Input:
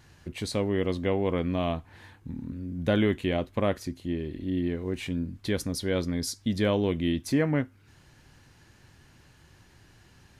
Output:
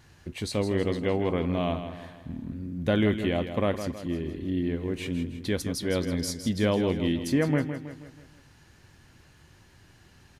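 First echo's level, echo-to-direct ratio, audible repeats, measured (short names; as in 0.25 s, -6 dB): -9.5 dB, -8.5 dB, 4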